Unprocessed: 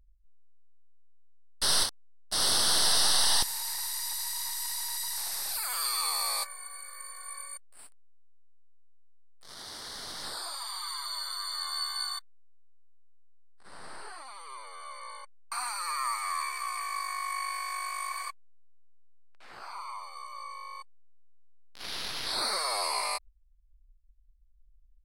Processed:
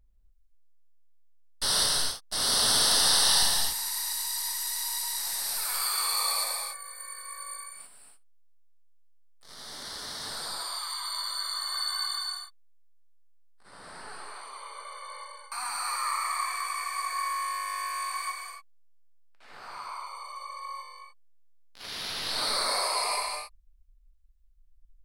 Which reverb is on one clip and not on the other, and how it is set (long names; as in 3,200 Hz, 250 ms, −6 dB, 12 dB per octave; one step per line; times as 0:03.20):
reverb whose tail is shaped and stops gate 320 ms flat, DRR −2.5 dB
level −2 dB